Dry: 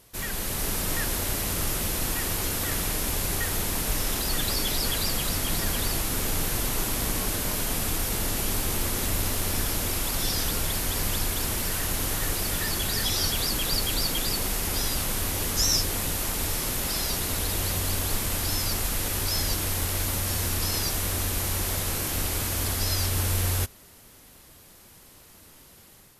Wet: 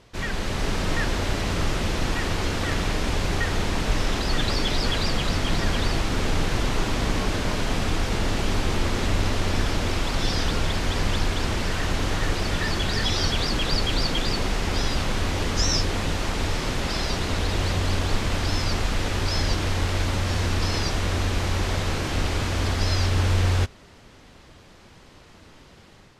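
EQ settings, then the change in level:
high-frequency loss of the air 140 metres
+6.0 dB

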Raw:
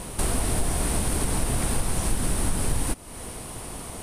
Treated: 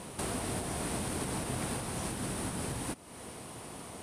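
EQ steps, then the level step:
high-pass filter 110 Hz 12 dB per octave
high-shelf EQ 9,500 Hz −9 dB
−6.0 dB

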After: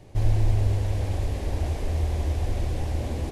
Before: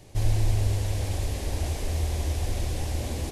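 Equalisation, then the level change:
high-shelf EQ 3,200 Hz −12 dB
+2.0 dB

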